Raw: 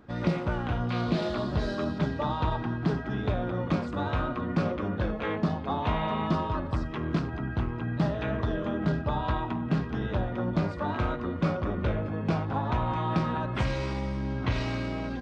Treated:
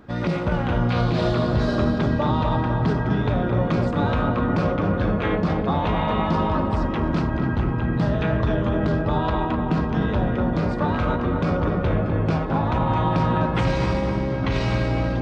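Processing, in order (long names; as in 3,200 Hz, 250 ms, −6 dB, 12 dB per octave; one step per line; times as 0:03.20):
brickwall limiter −20.5 dBFS, peak gain reduction 7 dB
on a send: feedback echo with a low-pass in the loop 252 ms, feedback 74%, low-pass 1,700 Hz, level −4.5 dB
on the sum: level +6.5 dB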